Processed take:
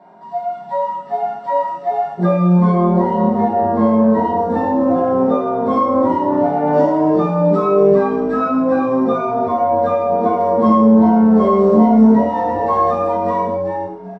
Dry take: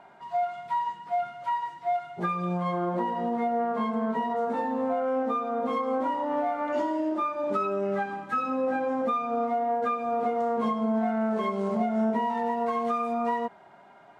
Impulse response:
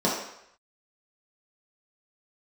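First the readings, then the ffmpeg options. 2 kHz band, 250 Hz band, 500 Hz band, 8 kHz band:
+5.0 dB, +16.0 dB, +13.5 dB, can't be measured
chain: -filter_complex "[0:a]dynaudnorm=framelen=190:gausssize=11:maxgain=3.5dB,asplit=5[link_01][link_02][link_03][link_04][link_05];[link_02]adelay=392,afreqshift=-140,volume=-6dB[link_06];[link_03]adelay=784,afreqshift=-280,volume=-16.5dB[link_07];[link_04]adelay=1176,afreqshift=-420,volume=-26.9dB[link_08];[link_05]adelay=1568,afreqshift=-560,volume=-37.4dB[link_09];[link_01][link_06][link_07][link_08][link_09]amix=inputs=5:normalize=0[link_10];[1:a]atrim=start_sample=2205,afade=type=out:start_time=0.17:duration=0.01,atrim=end_sample=7938[link_11];[link_10][link_11]afir=irnorm=-1:irlink=0,volume=-9.5dB"

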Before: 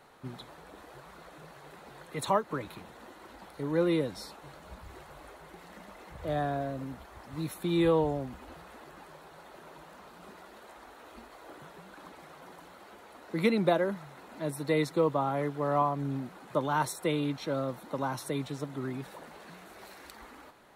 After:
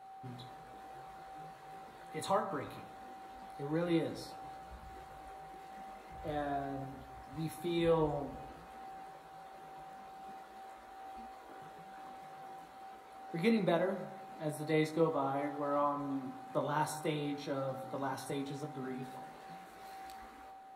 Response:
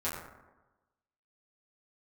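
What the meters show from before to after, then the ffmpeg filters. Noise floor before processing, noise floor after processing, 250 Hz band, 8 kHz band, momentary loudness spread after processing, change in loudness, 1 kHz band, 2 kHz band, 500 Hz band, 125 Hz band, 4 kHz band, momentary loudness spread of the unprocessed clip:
−53 dBFS, −54 dBFS, −5.0 dB, −6.0 dB, 18 LU, −5.5 dB, −4.0 dB, −5.5 dB, −5.0 dB, −6.5 dB, −5.5 dB, 23 LU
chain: -filter_complex "[0:a]aeval=exprs='val(0)+0.00501*sin(2*PI*770*n/s)':channel_layout=same,flanger=delay=17:depth=2.9:speed=0.45,asplit=2[link_01][link_02];[1:a]atrim=start_sample=2205,adelay=36[link_03];[link_02][link_03]afir=irnorm=-1:irlink=0,volume=-14dB[link_04];[link_01][link_04]amix=inputs=2:normalize=0,volume=-3dB"

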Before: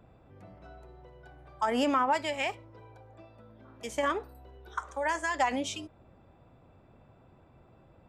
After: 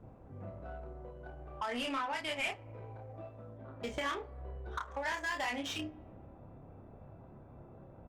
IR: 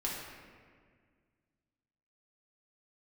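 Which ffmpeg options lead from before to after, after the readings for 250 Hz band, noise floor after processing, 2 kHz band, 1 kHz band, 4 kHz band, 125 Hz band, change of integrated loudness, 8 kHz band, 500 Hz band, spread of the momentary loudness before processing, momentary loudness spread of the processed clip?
−8.0 dB, −55 dBFS, −3.0 dB, −8.5 dB, −1.5 dB, +4.0 dB, −8.5 dB, −6.5 dB, −8.0 dB, 14 LU, 19 LU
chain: -filter_complex "[0:a]equalizer=frequency=9600:width_type=o:width=1.8:gain=11.5,aecho=1:1:29|58:0.708|0.15,acrossover=split=2200[link_01][link_02];[link_01]acompressor=threshold=-39dB:ratio=10[link_03];[link_02]asplit=2[link_04][link_05];[link_05]adelay=24,volume=-10dB[link_06];[link_04][link_06]amix=inputs=2:normalize=0[link_07];[link_03][link_07]amix=inputs=2:normalize=0,highshelf=frequency=6000:gain=-10,asplit=2[link_08][link_09];[1:a]atrim=start_sample=2205,highshelf=frequency=8300:gain=-9[link_10];[link_09][link_10]afir=irnorm=-1:irlink=0,volume=-20.5dB[link_11];[link_08][link_11]amix=inputs=2:normalize=0,asoftclip=type=hard:threshold=-31.5dB,adynamicsmooth=sensitivity=6.5:basefreq=1200,volume=3.5dB" -ar 48000 -c:a libopus -b:a 32k

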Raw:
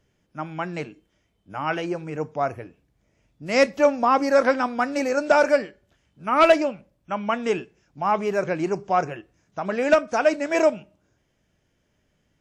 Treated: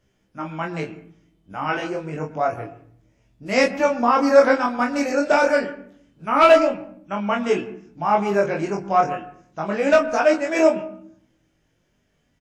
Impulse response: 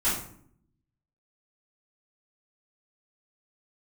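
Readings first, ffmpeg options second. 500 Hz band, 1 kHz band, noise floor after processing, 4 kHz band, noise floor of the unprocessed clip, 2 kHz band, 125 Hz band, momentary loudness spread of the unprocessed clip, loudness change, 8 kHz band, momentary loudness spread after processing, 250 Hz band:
+2.5 dB, +2.5 dB, −67 dBFS, +2.0 dB, −70 dBFS, +2.5 dB, +2.5 dB, 17 LU, +2.5 dB, +2.0 dB, 18 LU, +3.0 dB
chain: -filter_complex "[0:a]flanger=delay=15.5:depth=5.6:speed=0.28,asplit=2[link_01][link_02];[link_02]adelay=25,volume=-4dB[link_03];[link_01][link_03]amix=inputs=2:normalize=0,asplit=2[link_04][link_05];[1:a]atrim=start_sample=2205,lowpass=2400,adelay=102[link_06];[link_05][link_06]afir=irnorm=-1:irlink=0,volume=-25dB[link_07];[link_04][link_07]amix=inputs=2:normalize=0,volume=3.5dB"

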